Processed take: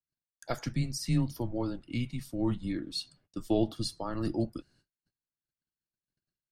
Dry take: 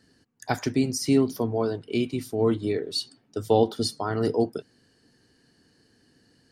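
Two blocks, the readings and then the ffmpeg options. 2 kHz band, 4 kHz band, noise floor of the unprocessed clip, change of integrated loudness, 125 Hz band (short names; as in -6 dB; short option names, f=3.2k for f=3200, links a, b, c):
-8.5 dB, -7.0 dB, -64 dBFS, -7.5 dB, -2.0 dB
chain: -af "afreqshift=-120,agate=range=-35dB:threshold=-57dB:ratio=16:detection=peak,volume=-7dB"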